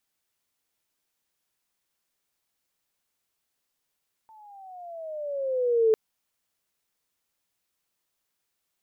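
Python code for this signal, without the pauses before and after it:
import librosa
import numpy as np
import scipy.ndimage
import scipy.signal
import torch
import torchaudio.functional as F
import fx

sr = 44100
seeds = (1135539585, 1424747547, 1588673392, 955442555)

y = fx.riser_tone(sr, length_s=1.65, level_db=-16, wave='sine', hz=892.0, rise_st=-12.5, swell_db=33)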